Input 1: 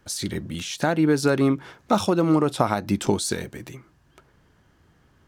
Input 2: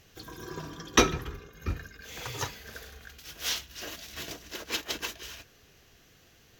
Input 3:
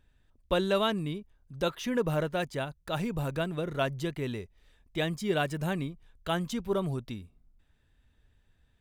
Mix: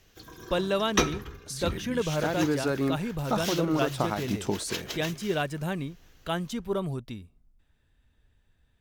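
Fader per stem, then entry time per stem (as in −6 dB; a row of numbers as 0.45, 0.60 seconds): −7.5, −3.0, 0.0 decibels; 1.40, 0.00, 0.00 seconds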